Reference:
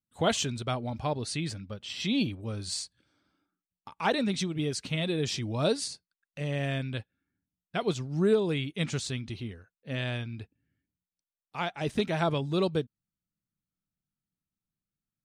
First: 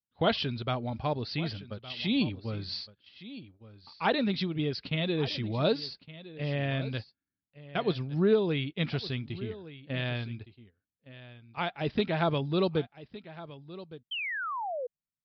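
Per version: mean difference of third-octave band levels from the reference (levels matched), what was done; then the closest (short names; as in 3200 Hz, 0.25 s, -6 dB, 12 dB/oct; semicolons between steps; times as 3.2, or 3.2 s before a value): 4.0 dB: gate -39 dBFS, range -11 dB; painted sound fall, 14.11–14.87, 470–3200 Hz -34 dBFS; on a send: echo 1.163 s -16.5 dB; on the sum: downsampling 11025 Hz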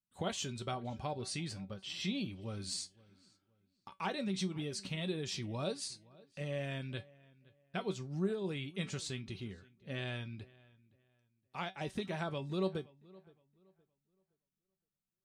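3.0 dB: compressor 3:1, threshold -30 dBFS, peak gain reduction 8.5 dB; resonator 190 Hz, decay 0.17 s, harmonics all, mix 70%; on a send: darkening echo 0.518 s, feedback 28%, low-pass 3500 Hz, level -23 dB; on the sum: gain +1.5 dB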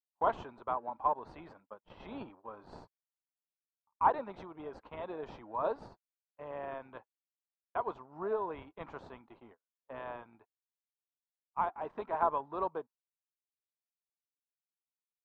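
11.0 dB: gate -39 dBFS, range -38 dB; HPF 580 Hz 12 dB/oct; in parallel at -12 dB: sample-and-hold 41×; on the sum: synth low-pass 1000 Hz, resonance Q 6.1; gain -6 dB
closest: second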